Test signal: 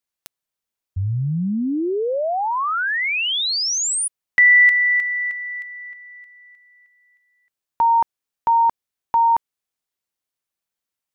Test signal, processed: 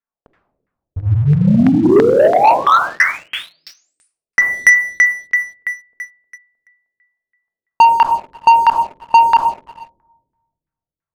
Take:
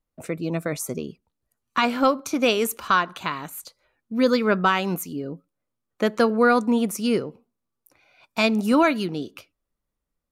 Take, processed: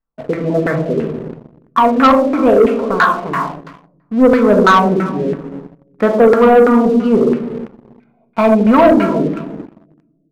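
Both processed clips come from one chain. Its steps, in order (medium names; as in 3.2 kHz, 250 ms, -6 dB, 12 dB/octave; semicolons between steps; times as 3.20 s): simulated room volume 830 m³, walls mixed, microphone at 1.6 m; LFO low-pass saw down 3 Hz 380–1800 Hz; waveshaping leveller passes 2; trim -1.5 dB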